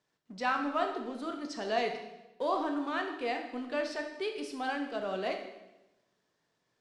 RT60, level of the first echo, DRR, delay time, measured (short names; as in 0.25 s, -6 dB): 1.0 s, none, 3.5 dB, none